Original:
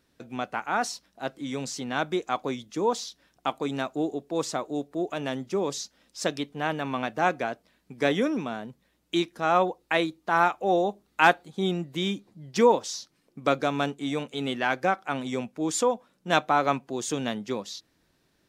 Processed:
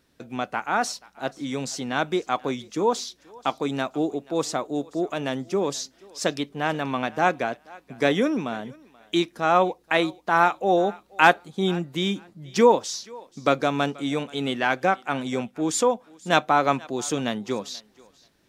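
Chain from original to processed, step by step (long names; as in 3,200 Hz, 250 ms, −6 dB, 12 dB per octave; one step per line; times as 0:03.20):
feedback echo with a high-pass in the loop 482 ms, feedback 21%, high-pass 420 Hz, level −22 dB
level +3 dB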